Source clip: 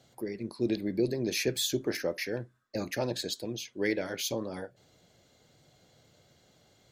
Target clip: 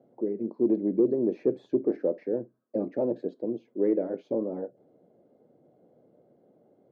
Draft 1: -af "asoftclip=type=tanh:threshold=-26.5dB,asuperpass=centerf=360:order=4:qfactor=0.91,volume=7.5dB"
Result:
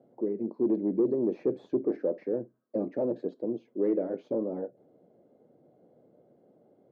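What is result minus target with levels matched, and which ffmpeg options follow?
soft clipping: distortion +7 dB
-af "asoftclip=type=tanh:threshold=-20.5dB,asuperpass=centerf=360:order=4:qfactor=0.91,volume=7.5dB"

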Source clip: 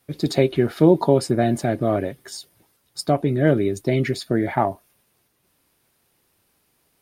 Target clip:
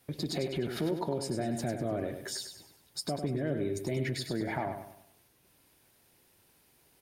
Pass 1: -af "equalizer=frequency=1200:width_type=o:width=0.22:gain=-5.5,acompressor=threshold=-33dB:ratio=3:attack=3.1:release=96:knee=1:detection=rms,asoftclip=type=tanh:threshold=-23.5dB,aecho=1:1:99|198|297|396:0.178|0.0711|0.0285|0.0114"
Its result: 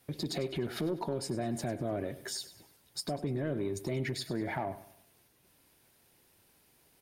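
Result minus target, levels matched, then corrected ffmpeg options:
soft clipping: distortion +18 dB; echo-to-direct −7.5 dB
-af "equalizer=frequency=1200:width_type=o:width=0.22:gain=-5.5,acompressor=threshold=-33dB:ratio=3:attack=3.1:release=96:knee=1:detection=rms,asoftclip=type=tanh:threshold=-13.5dB,aecho=1:1:99|198|297|396|495:0.422|0.169|0.0675|0.027|0.0108"

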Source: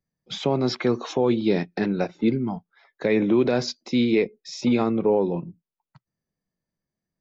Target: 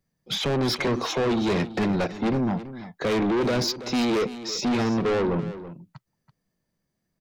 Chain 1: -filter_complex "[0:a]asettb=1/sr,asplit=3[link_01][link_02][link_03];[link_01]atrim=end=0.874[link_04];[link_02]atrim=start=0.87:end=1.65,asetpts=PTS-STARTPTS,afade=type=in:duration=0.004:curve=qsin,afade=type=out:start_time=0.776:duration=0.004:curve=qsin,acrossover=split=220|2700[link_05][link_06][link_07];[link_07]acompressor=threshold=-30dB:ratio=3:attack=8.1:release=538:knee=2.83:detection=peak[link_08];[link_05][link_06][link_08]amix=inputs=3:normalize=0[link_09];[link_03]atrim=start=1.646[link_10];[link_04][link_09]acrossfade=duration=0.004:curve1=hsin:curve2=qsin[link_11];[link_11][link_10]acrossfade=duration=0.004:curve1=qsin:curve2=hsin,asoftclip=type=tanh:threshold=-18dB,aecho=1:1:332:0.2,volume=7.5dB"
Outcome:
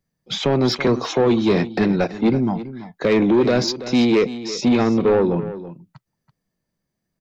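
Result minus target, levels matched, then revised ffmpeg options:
soft clipping: distortion −8 dB
-filter_complex "[0:a]asettb=1/sr,asplit=3[link_01][link_02][link_03];[link_01]atrim=end=0.874[link_04];[link_02]atrim=start=0.87:end=1.65,asetpts=PTS-STARTPTS,afade=type=in:duration=0.004:curve=qsin,afade=type=out:start_time=0.776:duration=0.004:curve=qsin,acrossover=split=220|2700[link_05][link_06][link_07];[link_07]acompressor=threshold=-30dB:ratio=3:attack=8.1:release=538:knee=2.83:detection=peak[link_08];[link_05][link_06][link_08]amix=inputs=3:normalize=0[link_09];[link_03]atrim=start=1.646[link_10];[link_04][link_09]acrossfade=duration=0.004:curve1=hsin:curve2=qsin[link_11];[link_11][link_10]acrossfade=duration=0.004:curve1=qsin:curve2=hsin,asoftclip=type=tanh:threshold=-28.5dB,aecho=1:1:332:0.2,volume=7.5dB"

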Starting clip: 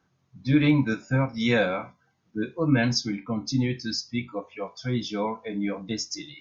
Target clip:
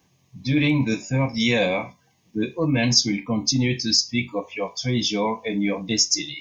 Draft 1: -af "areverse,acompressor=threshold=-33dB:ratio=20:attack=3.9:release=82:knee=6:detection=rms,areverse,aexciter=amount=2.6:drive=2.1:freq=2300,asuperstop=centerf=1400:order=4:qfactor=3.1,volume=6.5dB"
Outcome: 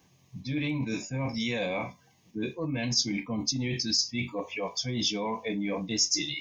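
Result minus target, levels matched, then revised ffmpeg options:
downward compressor: peak gain reduction +11 dB
-af "areverse,acompressor=threshold=-21.5dB:ratio=20:attack=3.9:release=82:knee=6:detection=rms,areverse,aexciter=amount=2.6:drive=2.1:freq=2300,asuperstop=centerf=1400:order=4:qfactor=3.1,volume=6.5dB"

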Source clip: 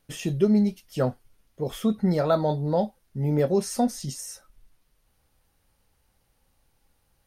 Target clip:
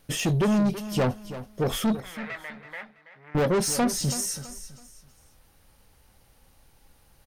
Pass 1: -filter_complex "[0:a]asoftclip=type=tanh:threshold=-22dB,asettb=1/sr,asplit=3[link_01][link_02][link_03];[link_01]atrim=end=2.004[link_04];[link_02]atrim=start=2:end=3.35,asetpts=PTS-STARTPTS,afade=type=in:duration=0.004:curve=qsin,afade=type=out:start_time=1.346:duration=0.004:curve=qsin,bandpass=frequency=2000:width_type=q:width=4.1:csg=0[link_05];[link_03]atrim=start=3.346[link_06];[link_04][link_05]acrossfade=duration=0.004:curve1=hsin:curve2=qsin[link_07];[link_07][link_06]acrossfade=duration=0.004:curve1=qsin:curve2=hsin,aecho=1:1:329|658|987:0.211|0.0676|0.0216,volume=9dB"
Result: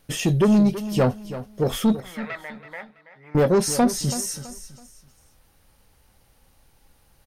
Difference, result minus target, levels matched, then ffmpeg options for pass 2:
soft clipping: distortion −5 dB
-filter_complex "[0:a]asoftclip=type=tanh:threshold=-29dB,asettb=1/sr,asplit=3[link_01][link_02][link_03];[link_01]atrim=end=2.004[link_04];[link_02]atrim=start=2:end=3.35,asetpts=PTS-STARTPTS,afade=type=in:duration=0.004:curve=qsin,afade=type=out:start_time=1.346:duration=0.004:curve=qsin,bandpass=frequency=2000:width_type=q:width=4.1:csg=0[link_05];[link_03]atrim=start=3.346[link_06];[link_04][link_05]acrossfade=duration=0.004:curve1=hsin:curve2=qsin[link_07];[link_07][link_06]acrossfade=duration=0.004:curve1=qsin:curve2=hsin,aecho=1:1:329|658|987:0.211|0.0676|0.0216,volume=9dB"

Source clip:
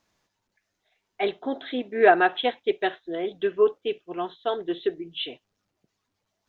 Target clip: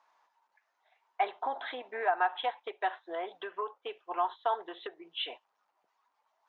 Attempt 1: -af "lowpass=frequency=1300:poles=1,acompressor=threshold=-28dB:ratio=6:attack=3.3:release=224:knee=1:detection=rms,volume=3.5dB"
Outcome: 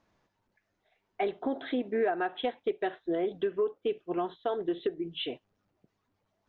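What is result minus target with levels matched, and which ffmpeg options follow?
1,000 Hz band −7.5 dB
-af "lowpass=frequency=1300:poles=1,acompressor=threshold=-28dB:ratio=6:attack=3.3:release=224:knee=1:detection=rms,highpass=frequency=920:width_type=q:width=3.5,volume=3.5dB"

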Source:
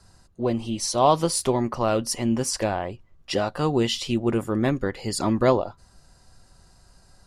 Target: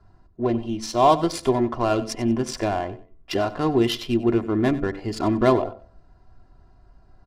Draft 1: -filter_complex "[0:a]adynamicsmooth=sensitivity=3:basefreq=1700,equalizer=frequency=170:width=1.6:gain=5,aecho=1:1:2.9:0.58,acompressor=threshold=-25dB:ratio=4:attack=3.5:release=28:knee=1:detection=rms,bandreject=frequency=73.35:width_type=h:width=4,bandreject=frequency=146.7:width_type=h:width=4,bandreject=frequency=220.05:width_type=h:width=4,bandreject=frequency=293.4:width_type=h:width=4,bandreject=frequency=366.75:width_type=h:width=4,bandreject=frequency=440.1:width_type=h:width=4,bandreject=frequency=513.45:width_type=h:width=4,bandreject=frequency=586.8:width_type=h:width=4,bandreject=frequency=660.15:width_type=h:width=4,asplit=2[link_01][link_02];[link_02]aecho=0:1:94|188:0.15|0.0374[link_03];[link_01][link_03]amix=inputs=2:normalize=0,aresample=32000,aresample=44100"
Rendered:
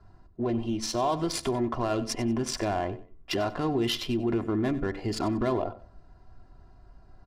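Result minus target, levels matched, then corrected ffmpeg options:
downward compressor: peak gain reduction +12 dB
-filter_complex "[0:a]adynamicsmooth=sensitivity=3:basefreq=1700,equalizer=frequency=170:width=1.6:gain=5,aecho=1:1:2.9:0.58,bandreject=frequency=73.35:width_type=h:width=4,bandreject=frequency=146.7:width_type=h:width=4,bandreject=frequency=220.05:width_type=h:width=4,bandreject=frequency=293.4:width_type=h:width=4,bandreject=frequency=366.75:width_type=h:width=4,bandreject=frequency=440.1:width_type=h:width=4,bandreject=frequency=513.45:width_type=h:width=4,bandreject=frequency=586.8:width_type=h:width=4,bandreject=frequency=660.15:width_type=h:width=4,asplit=2[link_01][link_02];[link_02]aecho=0:1:94|188:0.15|0.0374[link_03];[link_01][link_03]amix=inputs=2:normalize=0,aresample=32000,aresample=44100"

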